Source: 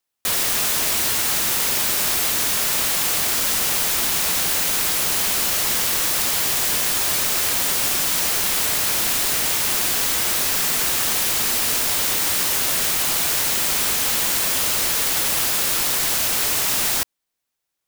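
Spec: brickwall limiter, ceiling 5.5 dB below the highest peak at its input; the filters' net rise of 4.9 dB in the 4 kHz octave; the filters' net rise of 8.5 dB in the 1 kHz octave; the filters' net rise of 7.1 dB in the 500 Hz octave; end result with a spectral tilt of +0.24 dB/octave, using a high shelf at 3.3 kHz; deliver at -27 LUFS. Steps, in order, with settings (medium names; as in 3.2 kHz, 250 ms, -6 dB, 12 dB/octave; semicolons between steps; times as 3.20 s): peaking EQ 500 Hz +6 dB; peaking EQ 1 kHz +8.5 dB; treble shelf 3.3 kHz +3.5 dB; peaking EQ 4 kHz +3 dB; trim -11.5 dB; peak limiter -19.5 dBFS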